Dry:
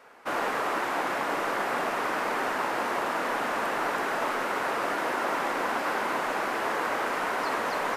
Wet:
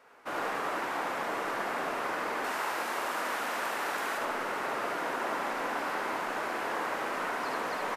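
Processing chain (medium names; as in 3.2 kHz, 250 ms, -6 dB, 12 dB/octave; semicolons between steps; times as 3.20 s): 2.44–4.18 s: tilt EQ +2 dB/octave; delay 73 ms -3.5 dB; trim -6 dB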